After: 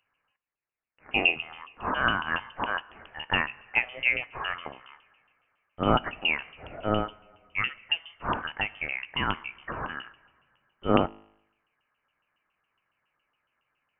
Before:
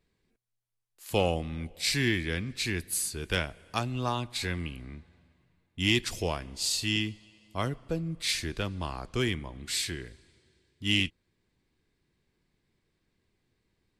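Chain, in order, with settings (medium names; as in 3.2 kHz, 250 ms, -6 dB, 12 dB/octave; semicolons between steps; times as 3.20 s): LFO high-pass saw up 7.2 Hz 500–2000 Hz; feedback comb 52 Hz, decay 0.84 s, harmonics all, mix 30%; frequency inversion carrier 3.3 kHz; dynamic bell 250 Hz, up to +5 dB, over -48 dBFS, Q 1.3; trim +5.5 dB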